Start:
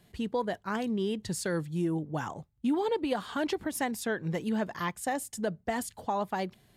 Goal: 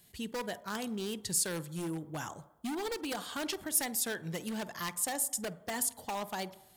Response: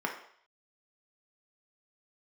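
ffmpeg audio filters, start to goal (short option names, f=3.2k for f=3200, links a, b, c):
-filter_complex "[0:a]aeval=exprs='0.0562*(abs(mod(val(0)/0.0562+3,4)-2)-1)':c=same,crystalizer=i=4.5:c=0,asplit=2[a][b];[1:a]atrim=start_sample=2205,asetrate=27342,aresample=44100,adelay=49[c];[b][c]afir=irnorm=-1:irlink=0,volume=-24dB[d];[a][d]amix=inputs=2:normalize=0,volume=-7dB"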